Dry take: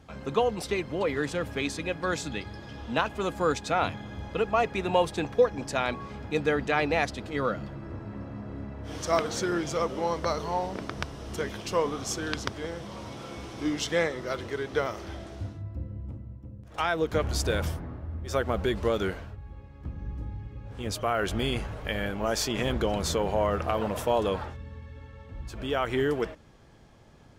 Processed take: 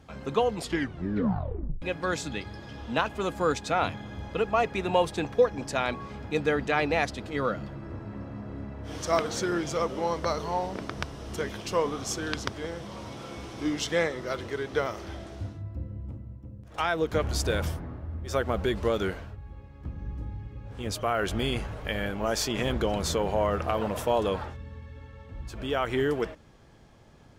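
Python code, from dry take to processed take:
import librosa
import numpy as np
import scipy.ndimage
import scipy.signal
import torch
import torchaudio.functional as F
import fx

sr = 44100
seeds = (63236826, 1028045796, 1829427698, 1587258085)

y = fx.edit(x, sr, fx.tape_stop(start_s=0.53, length_s=1.29), tone=tone)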